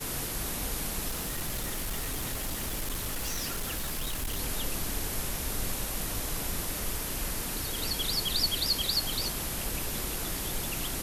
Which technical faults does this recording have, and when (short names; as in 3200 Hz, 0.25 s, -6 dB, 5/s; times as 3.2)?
1.08–4.4 clipped -29 dBFS